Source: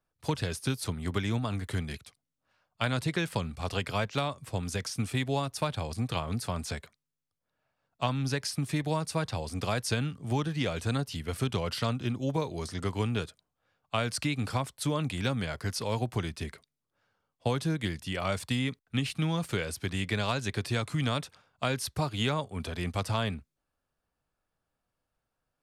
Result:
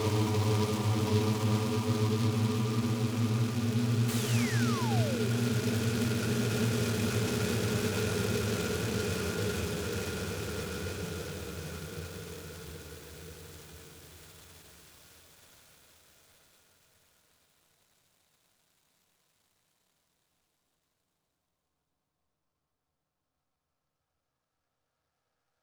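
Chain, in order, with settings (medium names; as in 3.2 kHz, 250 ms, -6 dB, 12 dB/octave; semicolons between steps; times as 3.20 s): Paulstretch 46×, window 0.25 s, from 13.02 s; painted sound fall, 4.08–5.29 s, 370–4600 Hz -38 dBFS; delay time shaken by noise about 3.4 kHz, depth 0.07 ms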